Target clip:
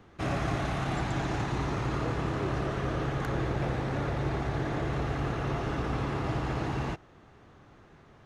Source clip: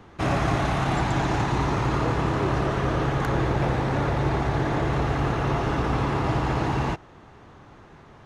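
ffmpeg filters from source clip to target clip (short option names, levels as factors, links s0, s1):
-af "equalizer=f=930:t=o:w=0.39:g=-4.5,volume=0.473"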